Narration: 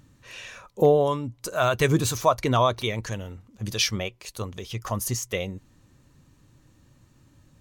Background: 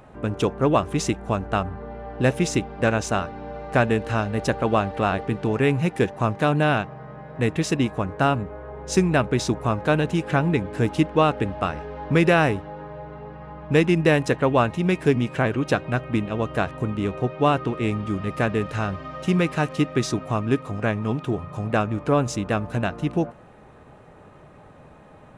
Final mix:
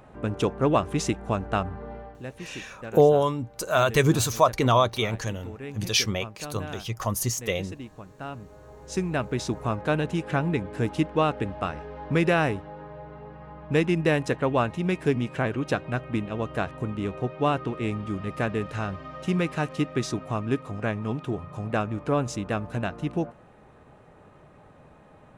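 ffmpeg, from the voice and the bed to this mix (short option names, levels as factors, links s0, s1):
-filter_complex "[0:a]adelay=2150,volume=1.12[s0];[1:a]volume=3.55,afade=t=out:st=1.95:d=0.25:silence=0.16788,afade=t=in:st=8.2:d=1.49:silence=0.211349[s1];[s0][s1]amix=inputs=2:normalize=0"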